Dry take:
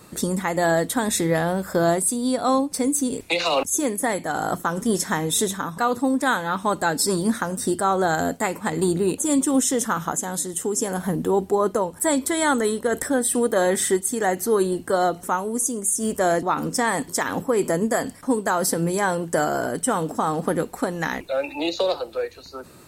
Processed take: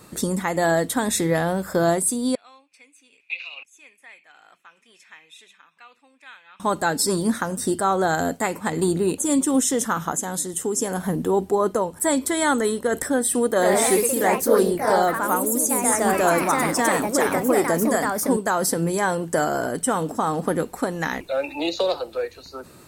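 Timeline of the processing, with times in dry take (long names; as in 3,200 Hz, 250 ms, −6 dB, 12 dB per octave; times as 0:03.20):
0:02.35–0:06.60: resonant band-pass 2,500 Hz, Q 11
0:13.49–0:18.85: delay with pitch and tempo change per echo 102 ms, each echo +2 semitones, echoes 3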